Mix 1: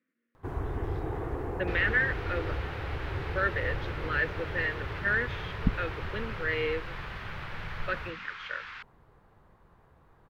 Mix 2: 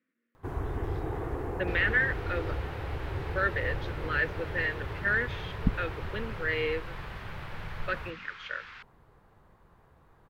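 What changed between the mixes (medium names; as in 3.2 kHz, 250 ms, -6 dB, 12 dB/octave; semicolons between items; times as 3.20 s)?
second sound -4.5 dB; master: add treble shelf 5.2 kHz +4.5 dB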